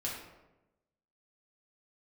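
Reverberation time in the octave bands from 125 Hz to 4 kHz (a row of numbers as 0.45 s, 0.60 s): 1.2 s, 1.1 s, 1.1 s, 0.90 s, 0.75 s, 0.60 s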